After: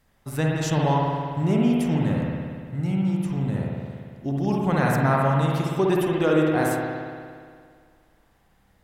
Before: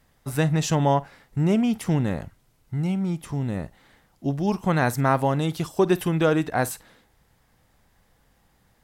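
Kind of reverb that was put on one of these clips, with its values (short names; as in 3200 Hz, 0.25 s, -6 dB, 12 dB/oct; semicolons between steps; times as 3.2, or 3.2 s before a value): spring tank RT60 2 s, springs 58 ms, chirp 70 ms, DRR -2.5 dB; gain -3.5 dB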